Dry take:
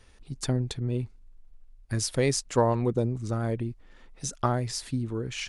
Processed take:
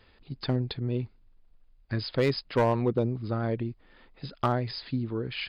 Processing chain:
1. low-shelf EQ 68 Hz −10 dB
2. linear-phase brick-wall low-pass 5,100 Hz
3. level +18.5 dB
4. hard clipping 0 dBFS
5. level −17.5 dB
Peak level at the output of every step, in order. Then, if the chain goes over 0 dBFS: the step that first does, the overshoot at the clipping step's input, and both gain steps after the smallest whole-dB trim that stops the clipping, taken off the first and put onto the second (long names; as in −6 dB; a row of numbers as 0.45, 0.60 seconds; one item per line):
−10.0, −10.0, +8.5, 0.0, −17.5 dBFS
step 3, 8.5 dB
step 3 +9.5 dB, step 5 −8.5 dB